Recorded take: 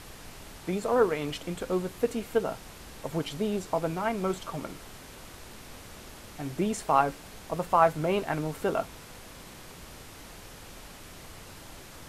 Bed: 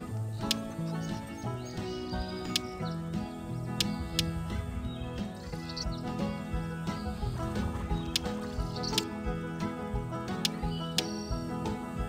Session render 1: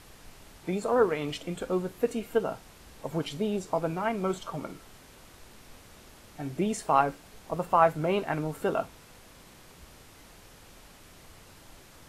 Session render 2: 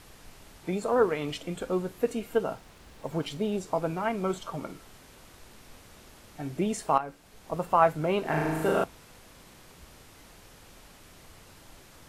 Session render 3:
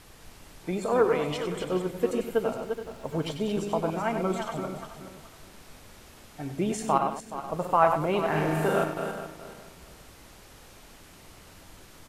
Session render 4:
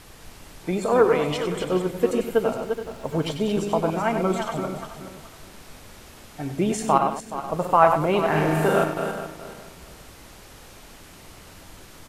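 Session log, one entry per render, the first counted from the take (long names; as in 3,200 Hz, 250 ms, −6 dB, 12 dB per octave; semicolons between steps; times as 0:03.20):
noise reduction from a noise print 6 dB
0:02.54–0:03.52: slack as between gear wheels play −56.5 dBFS; 0:06.98–0:07.55: fade in, from −13.5 dB; 0:08.21–0:08.84: flutter between parallel walls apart 6.5 metres, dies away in 1.4 s
feedback delay that plays each chunk backwards 212 ms, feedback 48%, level −6.5 dB; on a send: single-tap delay 96 ms −9 dB
level +5 dB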